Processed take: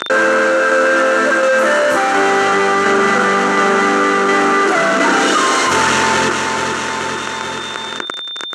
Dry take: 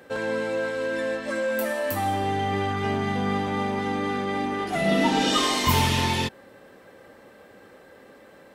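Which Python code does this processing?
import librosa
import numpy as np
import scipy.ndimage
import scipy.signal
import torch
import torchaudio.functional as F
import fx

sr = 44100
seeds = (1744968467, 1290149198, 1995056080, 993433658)

p1 = fx.hum_notches(x, sr, base_hz=50, count=9)
p2 = fx.fuzz(p1, sr, gain_db=42.0, gate_db=-41.0)
p3 = fx.tremolo_shape(p2, sr, shape='saw_down', hz=1.4, depth_pct=50)
p4 = p3 + 10.0 ** (-47.0 / 20.0) * np.sin(2.0 * np.pi * 3600.0 * np.arange(len(p3)) / sr)
p5 = fx.cabinet(p4, sr, low_hz=290.0, low_slope=12, high_hz=7400.0, hz=(360.0, 780.0, 1400.0, 2400.0, 3500.0, 4900.0), db=(4, -6, 10, -5, -9, -9))
p6 = p5 + fx.echo_feedback(p5, sr, ms=433, feedback_pct=41, wet_db=-14.5, dry=0)
p7 = fx.env_flatten(p6, sr, amount_pct=70)
y = p7 * 10.0 ** (2.0 / 20.0)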